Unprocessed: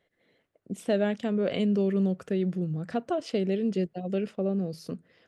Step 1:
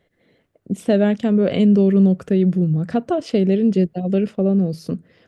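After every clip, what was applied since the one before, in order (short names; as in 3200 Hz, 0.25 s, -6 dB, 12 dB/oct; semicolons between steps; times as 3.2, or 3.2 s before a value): low shelf 330 Hz +9 dB; gain +5.5 dB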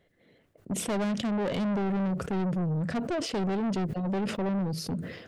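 soft clip -23.5 dBFS, distortion -6 dB; sustainer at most 64 dB/s; gain -3 dB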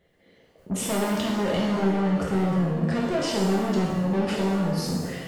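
shimmer reverb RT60 1 s, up +7 st, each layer -8 dB, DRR -3.5 dB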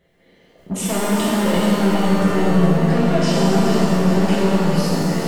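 split-band echo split 380 Hz, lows 0.239 s, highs 0.421 s, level -8.5 dB; shimmer reverb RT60 2.9 s, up +7 st, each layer -8 dB, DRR 0 dB; gain +3 dB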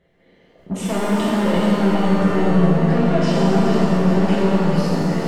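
LPF 2900 Hz 6 dB/oct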